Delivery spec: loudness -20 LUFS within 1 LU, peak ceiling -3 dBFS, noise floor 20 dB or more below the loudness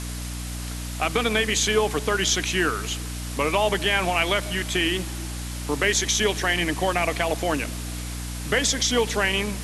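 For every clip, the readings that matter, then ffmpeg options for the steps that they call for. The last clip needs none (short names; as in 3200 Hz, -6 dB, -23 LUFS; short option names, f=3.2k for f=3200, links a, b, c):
hum 60 Hz; harmonics up to 300 Hz; hum level -30 dBFS; noise floor -32 dBFS; noise floor target -44 dBFS; loudness -23.5 LUFS; peak -7.5 dBFS; loudness target -20.0 LUFS
-> -af "bandreject=f=60:t=h:w=4,bandreject=f=120:t=h:w=4,bandreject=f=180:t=h:w=4,bandreject=f=240:t=h:w=4,bandreject=f=300:t=h:w=4"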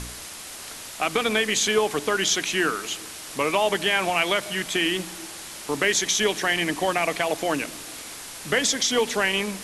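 hum none; noise floor -39 dBFS; noise floor target -43 dBFS
-> -af "afftdn=nr=6:nf=-39"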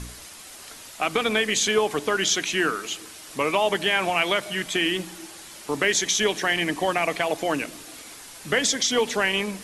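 noise floor -43 dBFS; noise floor target -44 dBFS
-> -af "afftdn=nr=6:nf=-43"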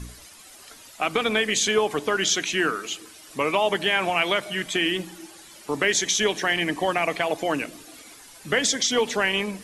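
noise floor -47 dBFS; loudness -23.5 LUFS; peak -8.0 dBFS; loudness target -20.0 LUFS
-> -af "volume=3.5dB"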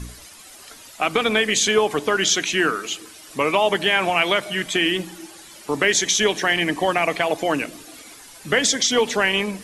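loudness -20.0 LUFS; peak -4.5 dBFS; noise floor -44 dBFS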